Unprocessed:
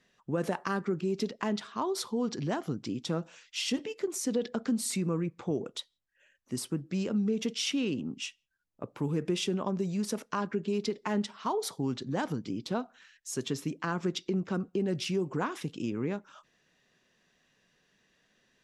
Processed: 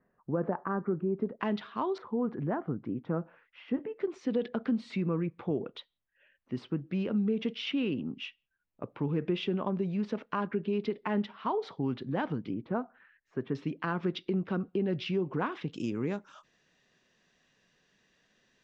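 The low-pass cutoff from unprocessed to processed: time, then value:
low-pass 24 dB/octave
1.4 kHz
from 1.40 s 3.5 kHz
from 1.98 s 1.7 kHz
from 4.00 s 3.2 kHz
from 12.54 s 1.9 kHz
from 13.55 s 3.6 kHz
from 15.73 s 7.6 kHz

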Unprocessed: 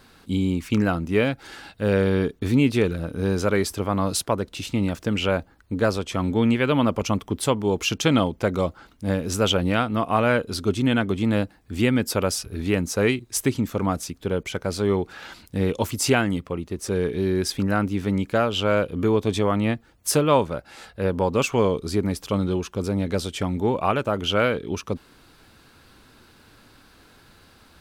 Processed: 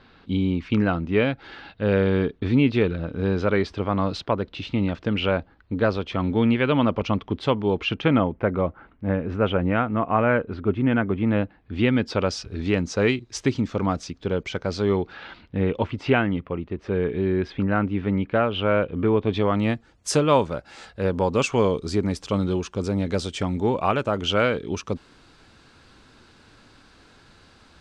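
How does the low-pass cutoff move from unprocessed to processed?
low-pass 24 dB/octave
7.70 s 4 kHz
8.21 s 2.3 kHz
11.09 s 2.3 kHz
12.44 s 5.7 kHz
14.85 s 5.7 kHz
15.56 s 3 kHz
19.26 s 3 kHz
19.69 s 8 kHz

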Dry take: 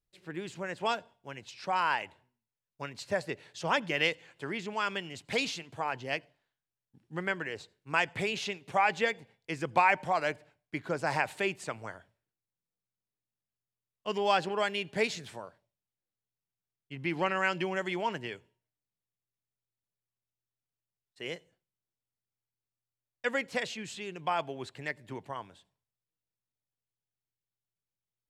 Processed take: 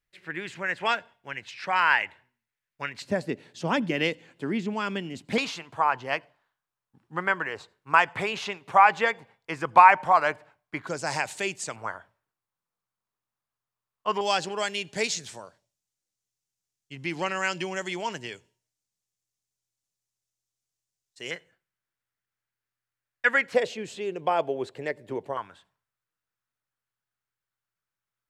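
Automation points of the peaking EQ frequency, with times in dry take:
peaking EQ +13.5 dB 1.3 oct
1.9 kHz
from 3.02 s 240 Hz
from 5.38 s 1.1 kHz
from 10.87 s 6.8 kHz
from 11.76 s 1.1 kHz
from 14.21 s 6.6 kHz
from 21.31 s 1.6 kHz
from 23.54 s 470 Hz
from 25.37 s 1.4 kHz

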